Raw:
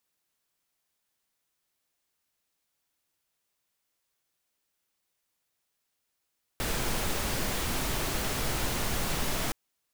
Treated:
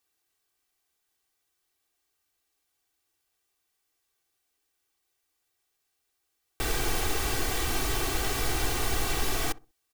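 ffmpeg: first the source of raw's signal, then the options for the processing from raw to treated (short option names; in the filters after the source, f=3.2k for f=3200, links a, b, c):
-f lavfi -i "anoisesrc=c=pink:a=0.162:d=2.92:r=44100:seed=1"
-filter_complex "[0:a]aecho=1:1:2.6:0.69,asplit=2[a][b];[b]adelay=63,lowpass=f=860:p=1,volume=-18dB,asplit=2[c][d];[d]adelay=63,lowpass=f=860:p=1,volume=0.3,asplit=2[e][f];[f]adelay=63,lowpass=f=860:p=1,volume=0.3[g];[a][c][e][g]amix=inputs=4:normalize=0"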